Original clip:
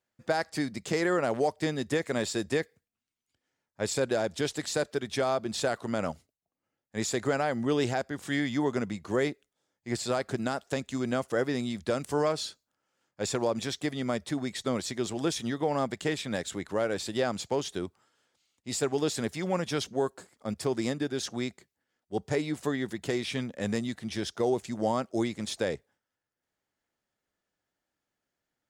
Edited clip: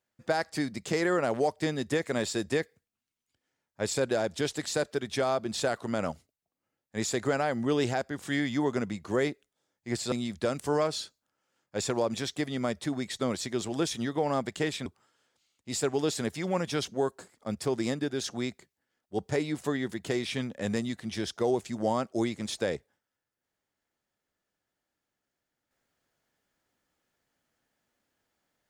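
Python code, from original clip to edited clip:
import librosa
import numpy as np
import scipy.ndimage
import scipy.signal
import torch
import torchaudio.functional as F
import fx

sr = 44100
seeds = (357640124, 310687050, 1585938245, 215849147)

y = fx.edit(x, sr, fx.cut(start_s=10.12, length_s=1.45),
    fx.cut(start_s=16.31, length_s=1.54), tone=tone)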